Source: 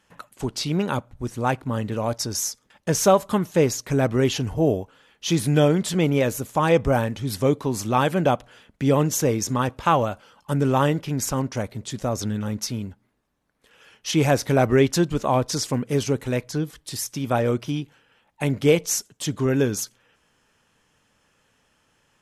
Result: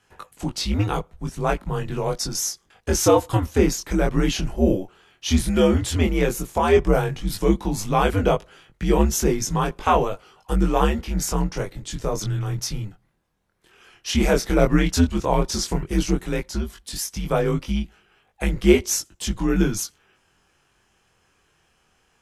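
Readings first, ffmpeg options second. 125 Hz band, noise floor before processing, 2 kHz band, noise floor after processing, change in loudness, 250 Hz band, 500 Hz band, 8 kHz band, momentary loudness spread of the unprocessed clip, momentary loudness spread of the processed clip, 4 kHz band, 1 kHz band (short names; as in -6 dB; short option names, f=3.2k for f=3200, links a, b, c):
-0.5 dB, -67 dBFS, +0.5 dB, -65 dBFS, +0.5 dB, +1.0 dB, 0.0 dB, +1.0 dB, 11 LU, 11 LU, +1.0 dB, 0.0 dB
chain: -af "flanger=delay=20:depth=4.2:speed=0.11,afreqshift=-91,volume=4dB"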